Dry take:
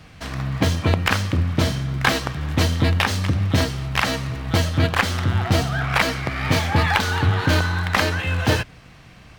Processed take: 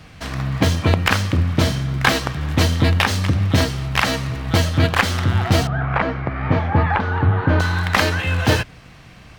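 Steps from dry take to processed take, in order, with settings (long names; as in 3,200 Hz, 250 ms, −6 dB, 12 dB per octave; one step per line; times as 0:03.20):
0:05.67–0:07.60: low-pass filter 1,400 Hz 12 dB per octave
level +2.5 dB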